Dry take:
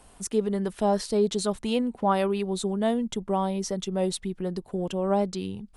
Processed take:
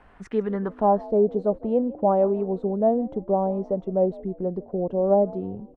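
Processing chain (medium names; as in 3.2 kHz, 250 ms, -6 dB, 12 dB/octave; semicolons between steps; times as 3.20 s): frequency-shifting echo 157 ms, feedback 41%, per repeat +56 Hz, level -21 dB; low-pass sweep 1.8 kHz -> 630 Hz, 0.43–1.17 s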